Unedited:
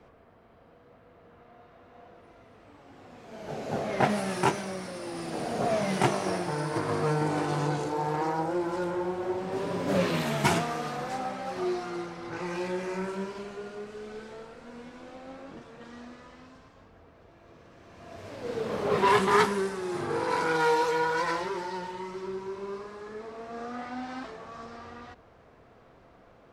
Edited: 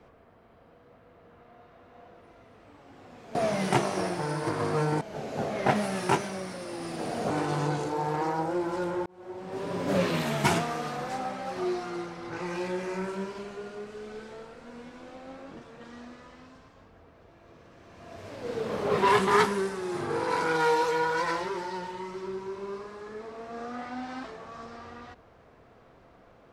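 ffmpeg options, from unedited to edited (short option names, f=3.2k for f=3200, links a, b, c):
-filter_complex "[0:a]asplit=5[a][b][c][d][e];[a]atrim=end=3.352[f];[b]atrim=start=5.638:end=7.302[g];[c]atrim=start=3.348:end=5.642[h];[d]atrim=start=7.298:end=9.06,asetpts=PTS-STARTPTS,afade=t=out:st=1.758:d=0.004:c=hsin[i];[e]atrim=start=9.06,asetpts=PTS-STARTPTS,afade=t=in:d=0.76[j];[f][g]acrossfade=d=0.004:c1=hsin:c2=hsin[k];[k][h]acrossfade=d=0.004:c1=hsin:c2=hsin[l];[i][j]concat=n=2:v=0:a=1[m];[l][m]acrossfade=d=0.004:c1=hsin:c2=hsin"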